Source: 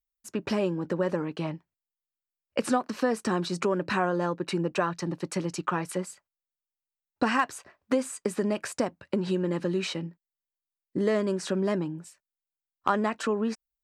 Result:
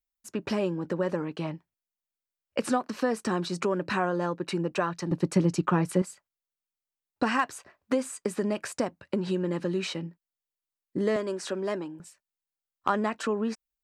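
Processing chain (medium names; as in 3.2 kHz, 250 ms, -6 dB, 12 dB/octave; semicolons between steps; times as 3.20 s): 5.11–6.02 s: bass shelf 420 Hz +11.5 dB; 11.16–12.00 s: high-pass 310 Hz 12 dB/octave; trim -1 dB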